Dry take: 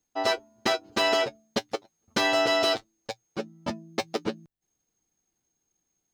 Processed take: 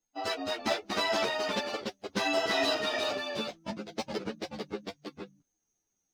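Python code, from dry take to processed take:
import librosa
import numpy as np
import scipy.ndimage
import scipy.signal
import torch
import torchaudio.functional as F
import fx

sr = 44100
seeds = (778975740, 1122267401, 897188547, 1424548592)

y = fx.spec_quant(x, sr, step_db=15)
y = fx.echo_pitch(y, sr, ms=200, semitones=-1, count=2, db_per_echo=-3.0)
y = fx.ensemble(y, sr)
y = y * 10.0 ** (-2.5 / 20.0)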